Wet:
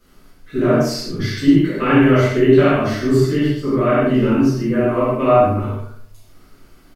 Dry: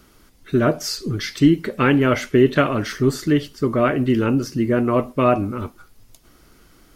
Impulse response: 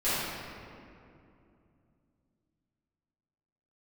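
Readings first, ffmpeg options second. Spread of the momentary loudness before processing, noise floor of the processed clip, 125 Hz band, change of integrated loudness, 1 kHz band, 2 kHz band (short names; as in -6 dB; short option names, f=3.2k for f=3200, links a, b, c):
8 LU, -49 dBFS, +4.0 dB, +3.5 dB, +3.5 dB, +1.5 dB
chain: -filter_complex "[0:a]asplit=2[a][b];[b]adelay=39,volume=-11dB[c];[a][c]amix=inputs=2:normalize=0,asplit=2[d][e];[e]adelay=69,lowpass=f=2.3k:p=1,volume=-8dB,asplit=2[f][g];[g]adelay=69,lowpass=f=2.3k:p=1,volume=0.5,asplit=2[h][i];[i]adelay=69,lowpass=f=2.3k:p=1,volume=0.5,asplit=2[j][k];[k]adelay=69,lowpass=f=2.3k:p=1,volume=0.5,asplit=2[l][m];[m]adelay=69,lowpass=f=2.3k:p=1,volume=0.5,asplit=2[n][o];[o]adelay=69,lowpass=f=2.3k:p=1,volume=0.5[p];[d][f][h][j][l][n][p]amix=inputs=7:normalize=0[q];[1:a]atrim=start_sample=2205,afade=t=out:st=0.22:d=0.01,atrim=end_sample=10143[r];[q][r]afir=irnorm=-1:irlink=0,volume=-9.5dB"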